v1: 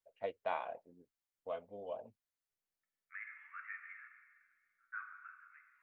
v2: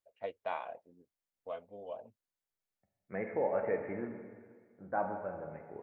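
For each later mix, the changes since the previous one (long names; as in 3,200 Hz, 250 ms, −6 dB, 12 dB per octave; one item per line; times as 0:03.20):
second voice: remove Butterworth high-pass 1,200 Hz 96 dB per octave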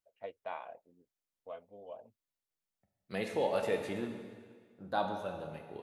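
first voice −4.0 dB
second voice: remove Chebyshev low-pass with heavy ripple 2,300 Hz, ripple 3 dB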